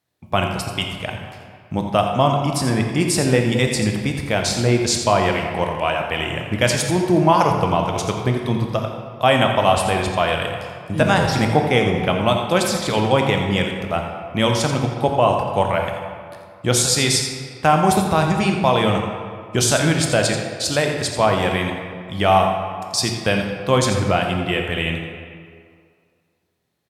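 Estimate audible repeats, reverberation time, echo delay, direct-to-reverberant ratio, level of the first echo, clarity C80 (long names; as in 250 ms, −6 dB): 1, 2.2 s, 85 ms, 2.5 dB, −10.5 dB, 4.5 dB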